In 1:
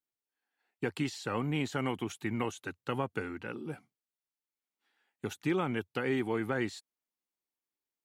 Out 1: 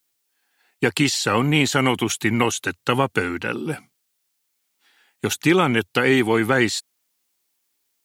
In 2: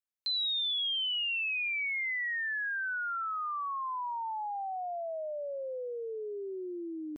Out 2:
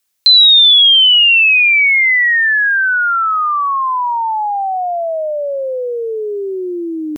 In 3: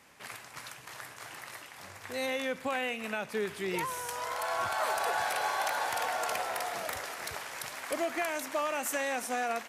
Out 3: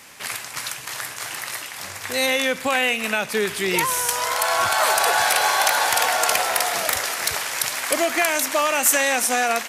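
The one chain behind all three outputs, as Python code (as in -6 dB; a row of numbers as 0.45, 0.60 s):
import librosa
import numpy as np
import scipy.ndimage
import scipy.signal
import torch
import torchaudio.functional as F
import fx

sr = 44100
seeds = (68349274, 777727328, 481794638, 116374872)

y = fx.high_shelf(x, sr, hz=2200.0, db=9.5)
y = y * 10.0 ** (-3 / 20.0) / np.max(np.abs(y))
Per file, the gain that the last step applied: +13.0, +17.5, +9.5 dB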